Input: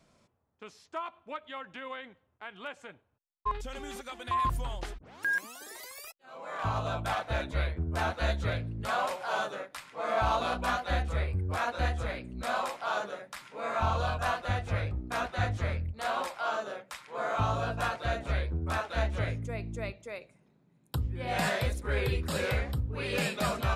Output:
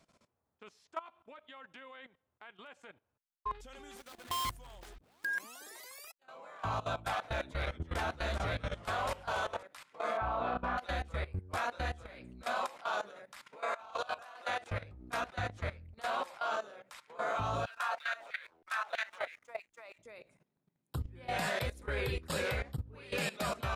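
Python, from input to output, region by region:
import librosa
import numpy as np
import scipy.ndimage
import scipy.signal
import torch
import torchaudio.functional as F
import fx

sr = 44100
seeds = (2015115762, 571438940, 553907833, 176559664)

y = fx.chain(x, sr, fx.dead_time(dead_ms=0.21),
    fx.high_shelf(hz=4800.0, db=4.0), at=(3.97, 5.25))
y = fx.chain(y, sr, fx.echo_pitch(ms=303, semitones=-2, count=2, db_per_echo=-6.0),
    fx.clip_hard(threshold_db=-21.5), at=(7.3, 9.63))
y = fx.chain(y, sr, fx.lowpass(hz=1800.0, slope=12),
    fx.room_flutter(wall_m=5.6, rt60_s=0.28), at=(10.17, 10.78))
y = fx.chain(y, sr, fx.highpass(hz=430.0, slope=12),
    fx.over_compress(threshold_db=-34.0, ratio=-0.5), at=(13.56, 14.71))
y = fx.chain(y, sr, fx.filter_lfo_highpass(shape='saw_down', hz=3.1, low_hz=610.0, high_hz=2400.0, q=2.2),
    fx.backlash(play_db=-55.0), at=(17.66, 19.99))
y = fx.low_shelf(y, sr, hz=250.0, db=-5.0)
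y = fx.level_steps(y, sr, step_db=17)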